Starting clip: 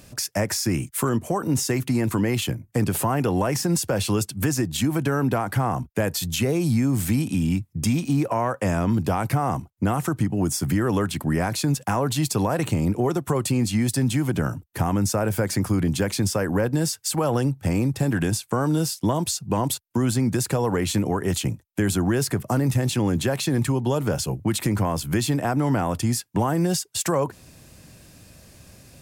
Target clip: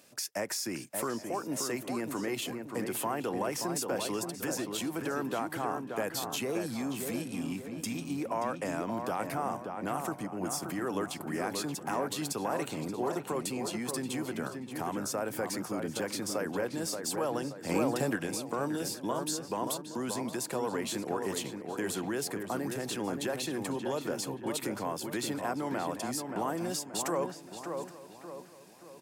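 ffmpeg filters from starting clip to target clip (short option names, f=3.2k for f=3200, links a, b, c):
-filter_complex "[0:a]highpass=300,asplit=2[a][b];[b]adelay=578,lowpass=f=2k:p=1,volume=-5dB,asplit=2[c][d];[d]adelay=578,lowpass=f=2k:p=1,volume=0.45,asplit=2[e][f];[f]adelay=578,lowpass=f=2k:p=1,volume=0.45,asplit=2[g][h];[h]adelay=578,lowpass=f=2k:p=1,volume=0.45,asplit=2[i][j];[j]adelay=578,lowpass=f=2k:p=1,volume=0.45,asplit=2[k][l];[l]adelay=578,lowpass=f=2k:p=1,volume=0.45[m];[c][e][g][i][k][m]amix=inputs=6:normalize=0[n];[a][n]amix=inputs=2:normalize=0,asettb=1/sr,asplit=3[o][p][q];[o]atrim=end=17.694[r];[p]atrim=start=17.69:end=18.16,asetpts=PTS-STARTPTS,afade=t=in:d=0.004:c=qsin,afade=t=out:st=0.466:d=0.004:c=qsin,acontrast=47[s];[q]atrim=start=18.156[t];[r][s]acrossfade=d=0.004:c1=hsin:c2=qsin[u];[u][t]acrossfade=d=0.004:c1=qsin:c2=hsin,asplit=2[v][w];[w]aecho=0:1:820:0.112[x];[v][x]amix=inputs=2:normalize=0,volume=-8.5dB" -ar 44100 -c:a aac -b:a 192k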